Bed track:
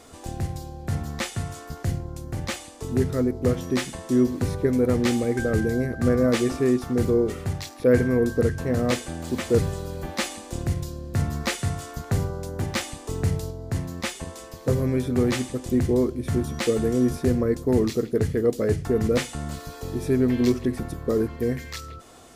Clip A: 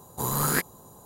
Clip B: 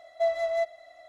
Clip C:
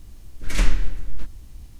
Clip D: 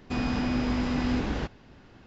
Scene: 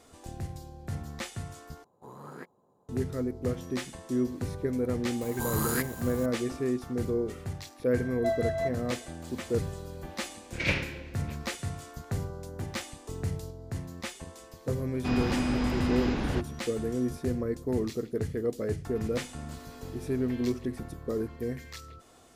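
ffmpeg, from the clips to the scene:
-filter_complex "[1:a]asplit=2[a][b];[4:a]asplit=2[c][d];[0:a]volume=-8.5dB[e];[a]bandpass=f=450:t=q:w=0.65:csg=0[f];[b]aeval=exprs='val(0)+0.5*0.02*sgn(val(0))':c=same[g];[3:a]highpass=180,equalizer=f=520:t=q:w=4:g=7,equalizer=f=1.2k:t=q:w=4:g=-6,equalizer=f=2.4k:t=q:w=4:g=10,lowpass=f=5k:w=0.5412,lowpass=f=5k:w=1.3066[h];[d]acompressor=threshold=-37dB:ratio=6:attack=3.2:release=140:knee=1:detection=peak[i];[e]asplit=2[j][k];[j]atrim=end=1.844[l];[f]atrim=end=1.05,asetpts=PTS-STARTPTS,volume=-13.5dB[m];[k]atrim=start=2.886[n];[g]atrim=end=1.05,asetpts=PTS-STARTPTS,volume=-7dB,afade=t=in:d=0.004:c=hsin,afade=t=out:st=1.046:d=0.004:c=hsin,adelay=229761S[o];[2:a]atrim=end=1.08,asetpts=PTS-STARTPTS,volume=-3.5dB,afade=t=in:d=0.004:c=hsin,afade=t=out:st=1.076:d=0.004:c=hsin,adelay=8040[p];[h]atrim=end=1.79,asetpts=PTS-STARTPTS,volume=-2dB,afade=t=in:d=0.004:c=hsin,afade=t=out:st=1.786:d=0.004:c=hsin,adelay=445410S[q];[c]atrim=end=2.06,asetpts=PTS-STARTPTS,volume=-1dB,afade=t=in:d=0.004:c=hsin,afade=t=out:st=2.056:d=0.004:c=hsin,adelay=14940[r];[i]atrim=end=2.06,asetpts=PTS-STARTPTS,volume=-11dB,afade=t=in:d=0.004:c=hsin,afade=t=out:st=2.056:d=0.004:c=hsin,adelay=18850[s];[l][m]acrossfade=d=0.004:c1=hsin:c2=hsin[t];[t][n]acrossfade=d=0.004:c1=hsin:c2=hsin[u];[u][o][p][q][r][s]amix=inputs=6:normalize=0"

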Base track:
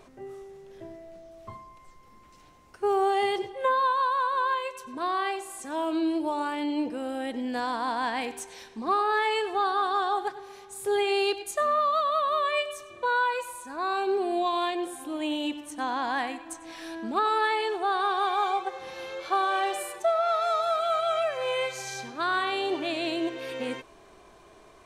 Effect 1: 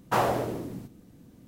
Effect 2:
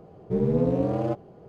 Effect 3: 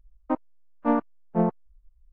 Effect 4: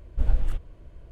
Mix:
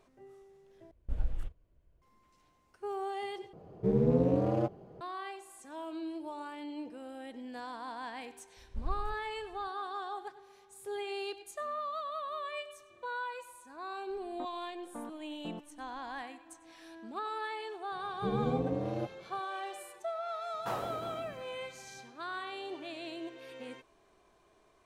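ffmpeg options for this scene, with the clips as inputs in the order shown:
-filter_complex "[4:a]asplit=2[a][b];[2:a]asplit=2[c][d];[0:a]volume=-13dB[e];[a]agate=range=-11dB:threshold=-36dB:ratio=16:release=100:detection=peak[f];[3:a]acompressor=threshold=-31dB:ratio=6:attack=3.2:release=140:knee=1:detection=peak[g];[1:a]aecho=1:1:350:0.211[h];[e]asplit=3[i][j][k];[i]atrim=end=0.914[l];[f]atrim=end=1.11,asetpts=PTS-STARTPTS,volume=-10.5dB[m];[j]atrim=start=2.016:end=3.534[n];[c]atrim=end=1.48,asetpts=PTS-STARTPTS,volume=-3.5dB[o];[k]atrim=start=5.006[p];[b]atrim=end=1.11,asetpts=PTS-STARTPTS,volume=-14.5dB,afade=t=in:d=0.004:c=hsin,afade=t=out:st=1.106:d=0.004:c=hsin,adelay=8570[q];[g]atrim=end=2.12,asetpts=PTS-STARTPTS,volume=-9dB,afade=t=in:d=0.004:c=hsin,afade=t=out:st=2.116:d=0.004:c=hsin,adelay=14100[r];[d]atrim=end=1.48,asetpts=PTS-STARTPTS,volume=-9dB,afade=t=in:d=0.004:c=hsin,afade=t=out:st=1.476:d=0.004:c=hsin,adelay=17920[s];[h]atrim=end=1.47,asetpts=PTS-STARTPTS,volume=-13.5dB,afade=t=in:d=0.004:c=hsin,afade=t=out:st=1.466:d=0.004:c=hsin,adelay=20540[t];[l][m]acrossfade=d=0.004:c1=hsin:c2=hsin[u];[u][n]acrossfade=d=0.004:c1=hsin:c2=hsin[v];[v][o]acrossfade=d=0.004:c1=hsin:c2=hsin[w];[w][p]acrossfade=d=0.004:c1=hsin:c2=hsin[x];[x][q][r][s][t]amix=inputs=5:normalize=0"

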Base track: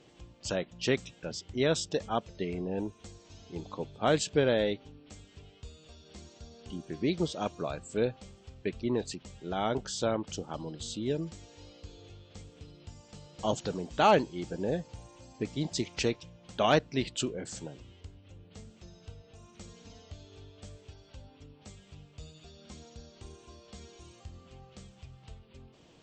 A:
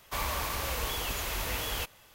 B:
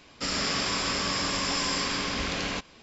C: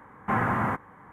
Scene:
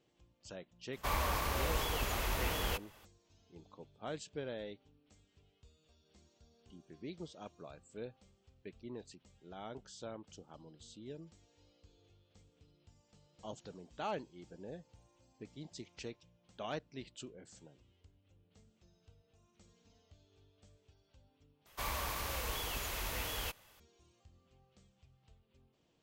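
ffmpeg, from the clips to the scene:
-filter_complex "[1:a]asplit=2[a][b];[0:a]volume=-16.5dB[c];[a]highshelf=f=2.2k:g=-6.5[d];[c]asplit=2[e][f];[e]atrim=end=21.664[g];[b]atrim=end=2.14,asetpts=PTS-STARTPTS,volume=-6dB[h];[f]atrim=start=23.796[i];[d]atrim=end=2.14,asetpts=PTS-STARTPTS,afade=t=in:d=0.02,afade=t=out:st=2.12:d=0.02,adelay=920[j];[g][h]acrossfade=d=0.004:c1=hsin:c2=hsin[k];[k][i]acrossfade=d=0.004:c1=hsin:c2=hsin[l];[l][j]amix=inputs=2:normalize=0"

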